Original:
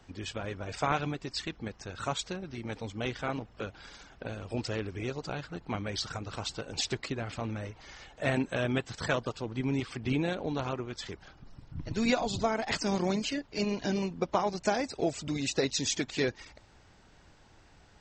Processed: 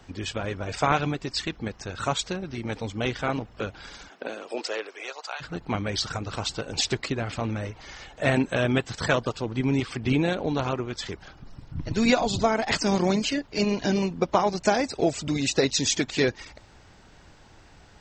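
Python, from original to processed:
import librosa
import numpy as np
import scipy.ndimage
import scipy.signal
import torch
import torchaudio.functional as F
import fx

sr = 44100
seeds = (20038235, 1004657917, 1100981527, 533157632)

y = fx.highpass(x, sr, hz=fx.line((4.08, 210.0), (5.4, 830.0)), slope=24, at=(4.08, 5.4), fade=0.02)
y = y * librosa.db_to_amplitude(6.5)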